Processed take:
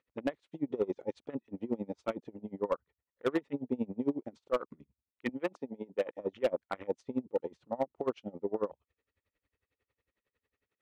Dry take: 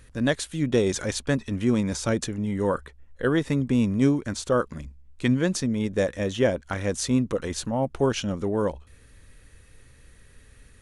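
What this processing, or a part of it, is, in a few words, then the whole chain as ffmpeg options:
helicopter radio: -filter_complex "[0:a]afwtdn=0.0251,highpass=340,lowpass=2700,aeval=exprs='val(0)*pow(10,-26*(0.5-0.5*cos(2*PI*11*n/s))/20)':c=same,asoftclip=type=hard:threshold=0.0891,asettb=1/sr,asplit=3[s0][s1][s2];[s0]atrim=end=5.294[s3];[s1]atrim=start=5.29:end=6.21,asetpts=PTS-STARTPTS,afade=t=in:d=0.004:c=qsin,afade=t=out:st=0.916:d=0.004:c=qsin,highpass=f=290:p=1[s4];[s2]atrim=start=6.206[s5];[s3][s4]acrossfade=d=0.004:c1=hsin:c2=qsin[s6];[s6][s5]acrossfade=d=0.004:c1=qsin:c2=hsin,equalizer=f=1600:w=6.6:g=-11.5"

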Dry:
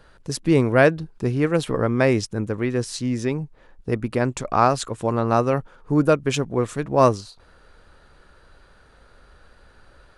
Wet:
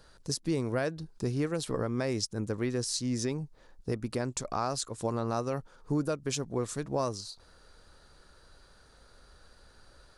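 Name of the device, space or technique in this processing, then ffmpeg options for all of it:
over-bright horn tweeter: -af "highshelf=f=3600:t=q:w=1.5:g=7.5,alimiter=limit=0.2:level=0:latency=1:release=280,volume=0.501"

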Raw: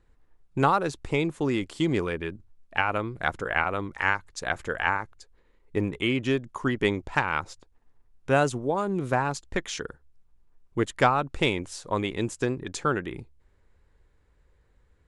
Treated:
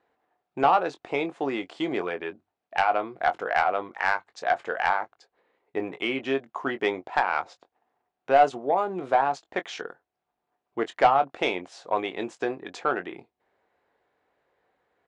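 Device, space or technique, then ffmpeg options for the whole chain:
intercom: -filter_complex "[0:a]highpass=340,lowpass=3700,equalizer=f=720:t=o:w=0.39:g=11.5,asoftclip=type=tanh:threshold=0.316,asplit=2[s0][s1];[s1]adelay=22,volume=0.316[s2];[s0][s2]amix=inputs=2:normalize=0"

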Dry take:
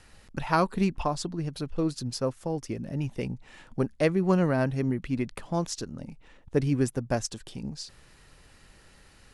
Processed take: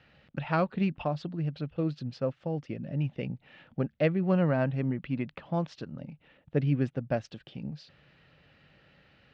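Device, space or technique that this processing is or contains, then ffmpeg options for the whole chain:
guitar cabinet: -filter_complex "[0:a]highpass=93,equalizer=f=150:t=q:w=4:g=6,equalizer=f=390:t=q:w=4:g=-4,equalizer=f=570:t=q:w=4:g=4,equalizer=f=1000:t=q:w=4:g=-7,equalizer=f=2800:t=q:w=4:g=3,lowpass=f=3600:w=0.5412,lowpass=f=3600:w=1.3066,asettb=1/sr,asplit=3[s0][s1][s2];[s0]atrim=end=4.344[s3];[s1]atrim=start=4.34:end=6.01,asetpts=PTS-STARTPTS,afade=t=in:d=0.004:c=qsin,afade=t=out:st=1.666:d=0.004:c=qsin,equalizer=f=990:w=2.7:g=5.5[s4];[s2]atrim=start=6.006[s5];[s3][s4]acrossfade=d=0.004:c1=hsin:c2=qsin[s6];[s6][s5]acrossfade=d=0.004:c1=qsin:c2=hsin,volume=0.708"

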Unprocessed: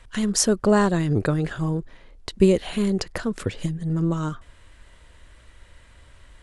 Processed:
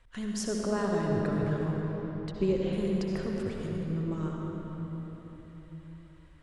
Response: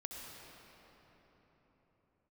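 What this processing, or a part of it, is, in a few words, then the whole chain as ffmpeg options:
swimming-pool hall: -filter_complex "[1:a]atrim=start_sample=2205[s0];[0:a][s0]afir=irnorm=-1:irlink=0,highshelf=f=5500:g=-7.5,asettb=1/sr,asplit=3[s1][s2][s3];[s1]atrim=end=2.304[s4];[s2]atrim=start=2.3:end=2.73,asetpts=PTS-STARTPTS,afade=t=in:d=0.004:c=qsin,afade=t=out:st=0.426:d=0.004:c=qsin,lowpass=f=6800:w=0.5412,lowpass=f=6800:w=1.3066[s5];[s3]atrim=start=2.726[s6];[s4][s5]acrossfade=d=0.004:c1=hsin:c2=qsin[s7];[s7][s6]acrossfade=d=0.004:c1=qsin:c2=hsin,volume=0.447"

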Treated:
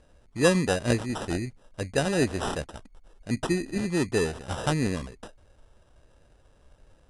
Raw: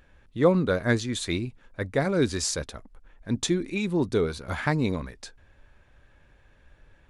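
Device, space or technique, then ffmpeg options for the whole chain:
crushed at another speed: -af "asetrate=88200,aresample=44100,acrusher=samples=10:mix=1:aa=0.000001,asetrate=22050,aresample=44100,volume=0.891"

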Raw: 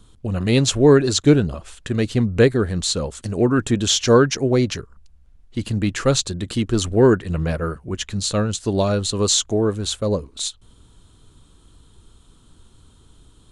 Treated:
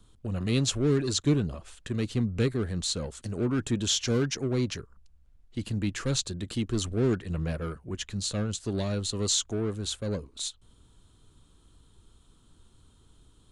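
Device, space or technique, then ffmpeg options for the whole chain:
one-band saturation: -filter_complex "[0:a]acrossover=split=340|2200[s0][s1][s2];[s1]asoftclip=type=tanh:threshold=0.0473[s3];[s0][s3][s2]amix=inputs=3:normalize=0,volume=0.398"

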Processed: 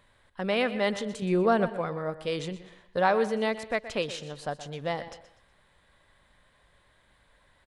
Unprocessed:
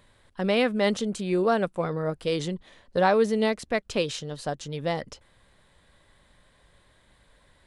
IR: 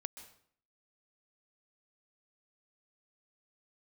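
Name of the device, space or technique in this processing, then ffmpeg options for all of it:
filtered reverb send: -filter_complex "[0:a]asettb=1/sr,asplit=3[s0][s1][s2];[s0]atrim=end=1.224[s3];[s1]atrim=start=1.22:end=1.69,asetpts=PTS-STARTPTS,afade=t=in:d=0.004:c=qsin,afade=t=out:st=0.466:d=0.004:c=qsin,lowshelf=f=380:g=9[s4];[s2]atrim=start=1.686[s5];[s3][s4]acrossfade=d=0.004:c1=hsin:c2=qsin[s6];[s6][s5]acrossfade=d=0.004:c1=qsin:c2=hsin,asplit=2[s7][s8];[s8]highpass=520,lowpass=3600[s9];[1:a]atrim=start_sample=2205[s10];[s9][s10]afir=irnorm=-1:irlink=0,volume=0.891[s11];[s7][s11]amix=inputs=2:normalize=0,aecho=1:1:123|246|369:0.188|0.0622|0.0205,volume=0.562"

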